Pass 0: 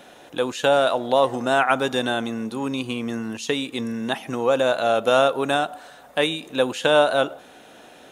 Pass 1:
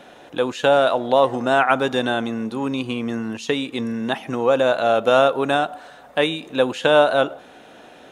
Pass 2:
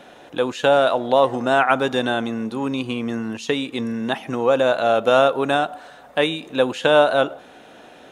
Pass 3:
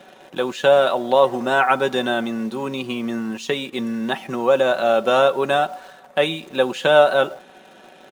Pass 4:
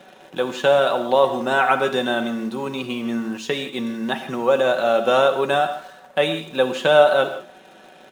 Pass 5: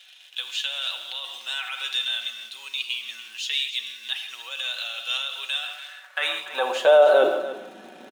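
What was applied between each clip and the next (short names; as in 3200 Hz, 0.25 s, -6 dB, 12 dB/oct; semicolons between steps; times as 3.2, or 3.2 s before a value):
high shelf 5900 Hz -10.5 dB; gain +2.5 dB
nothing audible
HPF 110 Hz 12 dB/oct; comb 5.3 ms, depth 52%; in parallel at -11 dB: bit-crush 6-bit; on the sum: gain -3 dB
non-linear reverb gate 0.19 s flat, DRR 8.5 dB; gain -1 dB
limiter -12 dBFS, peak gain reduction 9.5 dB; high-pass sweep 3100 Hz -> 240 Hz, 5.59–7.57; echo 0.289 s -14 dB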